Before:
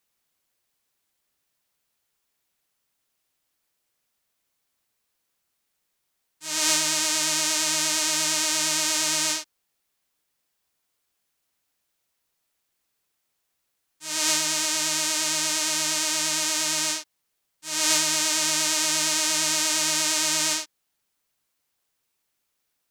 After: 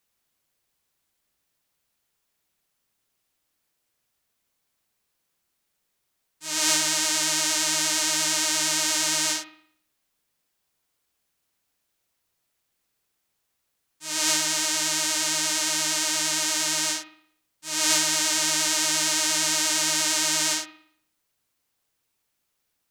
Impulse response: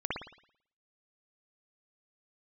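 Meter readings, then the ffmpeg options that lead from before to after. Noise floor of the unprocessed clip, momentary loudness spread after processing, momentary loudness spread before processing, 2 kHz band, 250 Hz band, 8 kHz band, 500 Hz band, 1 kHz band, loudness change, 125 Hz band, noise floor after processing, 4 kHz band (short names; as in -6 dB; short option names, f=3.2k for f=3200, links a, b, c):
-77 dBFS, 6 LU, 6 LU, +0.5 dB, +0.5 dB, 0.0 dB, 0.0 dB, 0.0 dB, 0.0 dB, +0.5 dB, -77 dBFS, 0.0 dB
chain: -filter_complex "[0:a]asplit=2[a][b];[1:a]atrim=start_sample=2205,lowshelf=f=450:g=10[c];[b][c]afir=irnorm=-1:irlink=0,volume=-16.5dB[d];[a][d]amix=inputs=2:normalize=0,volume=-1dB"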